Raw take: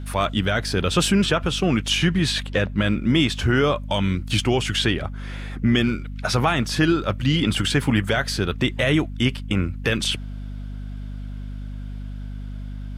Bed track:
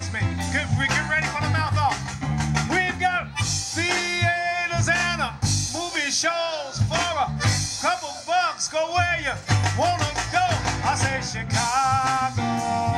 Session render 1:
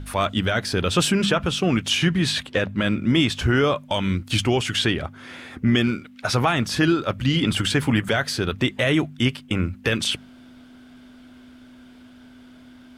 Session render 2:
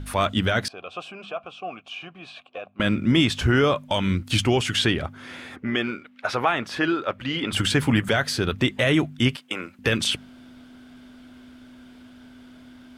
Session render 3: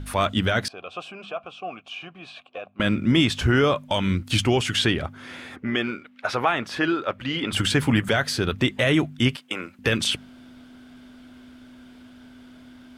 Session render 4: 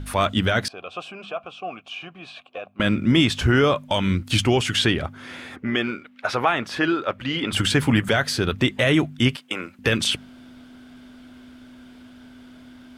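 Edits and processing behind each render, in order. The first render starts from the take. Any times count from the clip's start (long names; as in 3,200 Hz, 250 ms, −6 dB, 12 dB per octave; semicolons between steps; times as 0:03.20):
hum removal 50 Hz, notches 4
0:00.68–0:02.80: formant filter a; 0:05.56–0:07.53: bass and treble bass −15 dB, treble −13 dB; 0:09.36–0:09.79: high-pass filter 480 Hz
no processing that can be heard
level +1.5 dB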